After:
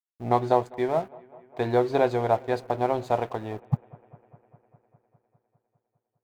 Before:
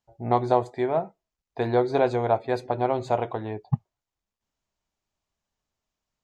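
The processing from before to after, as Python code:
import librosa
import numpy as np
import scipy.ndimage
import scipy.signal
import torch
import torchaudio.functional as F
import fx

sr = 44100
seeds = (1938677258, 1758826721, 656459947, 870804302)

y = fx.quant_dither(x, sr, seeds[0], bits=12, dither='triangular')
y = np.sign(y) * np.maximum(np.abs(y) - 10.0 ** (-44.0 / 20.0), 0.0)
y = fx.echo_bbd(y, sr, ms=202, stages=4096, feedback_pct=73, wet_db=-24)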